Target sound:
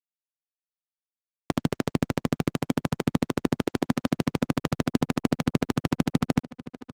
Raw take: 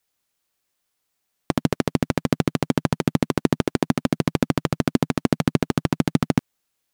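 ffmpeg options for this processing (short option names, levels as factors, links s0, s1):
-filter_complex "[0:a]highpass=f=52:w=0.5412,highpass=f=52:w=1.3066,asplit=3[s0][s1][s2];[s0]afade=t=out:st=2.34:d=0.02[s3];[s1]equalizer=f=12000:t=o:w=0.63:g=3.5,afade=t=in:st=2.34:d=0.02,afade=t=out:st=2.94:d=0.02[s4];[s2]afade=t=in:st=2.94:d=0.02[s5];[s3][s4][s5]amix=inputs=3:normalize=0,alimiter=limit=0.376:level=0:latency=1:release=28,aeval=exprs='sgn(val(0))*max(abs(val(0))-0.00531,0)':c=same,asplit=2[s6][s7];[s7]adelay=1121,lowpass=f=4800:p=1,volume=0.141,asplit=2[s8][s9];[s9]adelay=1121,lowpass=f=4800:p=1,volume=0.48,asplit=2[s10][s11];[s11]adelay=1121,lowpass=f=4800:p=1,volume=0.48,asplit=2[s12][s13];[s13]adelay=1121,lowpass=f=4800:p=1,volume=0.48[s14];[s6][s8][s10][s12][s14]amix=inputs=5:normalize=0" -ar 48000 -c:a libopus -b:a 48k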